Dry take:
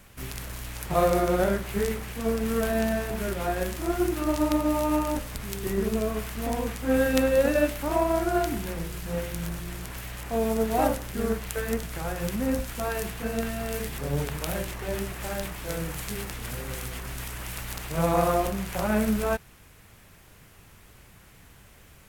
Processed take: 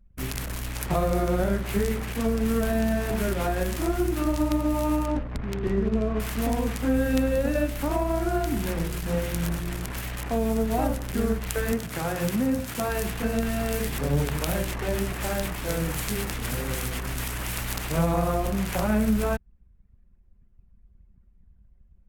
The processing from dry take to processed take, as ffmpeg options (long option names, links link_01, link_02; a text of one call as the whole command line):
ffmpeg -i in.wav -filter_complex "[0:a]asettb=1/sr,asplit=3[link_01][link_02][link_03];[link_01]atrim=end=5.064[link_04];[link_02]atrim=start=5.06:end=6.2,asetpts=PTS-STARTPTS,afade=type=in:duration=0.004:curve=qsin,afade=type=out:start_time=1.136:duration=0.004:curve=qsin,aemphasis=mode=reproduction:type=75kf[link_05];[link_03]atrim=start=6.196[link_06];[link_04][link_05]acrossfade=duration=0.004:curve1=hsin:curve2=qsin[link_07];[link_07][link_06]acrossfade=duration=0.004:curve1=qsin:curve2=hsin,asettb=1/sr,asplit=3[link_08][link_09][link_10];[link_08]atrim=end=11.724[link_11];[link_09]atrim=start=11.72:end=12.89,asetpts=PTS-STARTPTS,afade=type=in:duration=0.004:curve=qsin,afade=type=out:start_time=1.166:duration=0.004:curve=qsin,highpass=frequency=80:width=0.5412,highpass=frequency=80:width=1.3066[link_12];[link_10]atrim=start=12.886[link_13];[link_11][link_12]acrossfade=duration=0.004:curve1=hsin:curve2=qsin[link_14];[link_14][link_13]acrossfade=duration=0.004:curve1=qsin:curve2=hsin,anlmdn=0.398,equalizer=frequency=260:width=3:gain=3.5,acrossover=split=170[link_15][link_16];[link_16]acompressor=threshold=-30dB:ratio=4[link_17];[link_15][link_17]amix=inputs=2:normalize=0,volume=5dB" out.wav